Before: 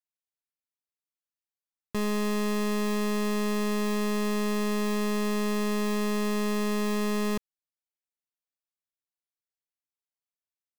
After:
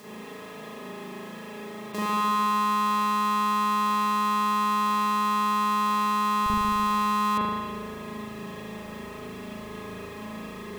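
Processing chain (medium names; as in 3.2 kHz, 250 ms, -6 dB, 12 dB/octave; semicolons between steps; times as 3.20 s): spectral levelling over time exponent 0.2; high-pass 180 Hz 12 dB/octave, from 6.46 s 65 Hz; spring tank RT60 1.7 s, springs 37 ms, chirp 70 ms, DRR -9 dB; trim -2.5 dB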